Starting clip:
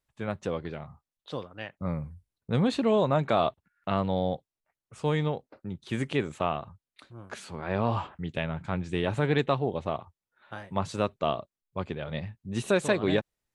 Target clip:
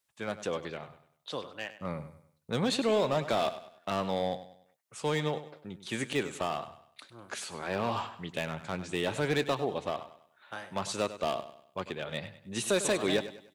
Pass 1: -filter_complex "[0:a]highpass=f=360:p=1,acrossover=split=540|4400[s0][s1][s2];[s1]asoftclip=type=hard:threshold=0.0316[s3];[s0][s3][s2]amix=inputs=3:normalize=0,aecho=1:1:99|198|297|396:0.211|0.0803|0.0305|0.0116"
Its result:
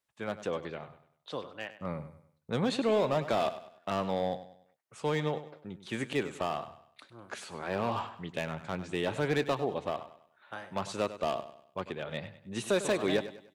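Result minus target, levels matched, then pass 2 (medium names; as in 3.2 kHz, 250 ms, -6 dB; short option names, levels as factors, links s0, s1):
8 kHz band -6.5 dB
-filter_complex "[0:a]highpass=f=360:p=1,highshelf=f=3200:g=8.5,acrossover=split=540|4400[s0][s1][s2];[s1]asoftclip=type=hard:threshold=0.0316[s3];[s0][s3][s2]amix=inputs=3:normalize=0,aecho=1:1:99|198|297|396:0.211|0.0803|0.0305|0.0116"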